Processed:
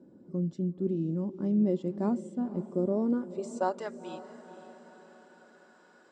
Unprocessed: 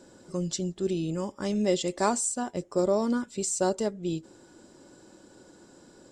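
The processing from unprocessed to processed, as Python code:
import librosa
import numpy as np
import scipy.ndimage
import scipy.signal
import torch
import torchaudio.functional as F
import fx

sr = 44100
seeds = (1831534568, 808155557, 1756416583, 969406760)

y = fx.filter_sweep_bandpass(x, sr, from_hz=220.0, to_hz=1500.0, start_s=2.89, end_s=3.89, q=1.6)
y = fx.echo_diffused(y, sr, ms=498, feedback_pct=52, wet_db=-14)
y = F.gain(torch.from_numpy(y), 3.0).numpy()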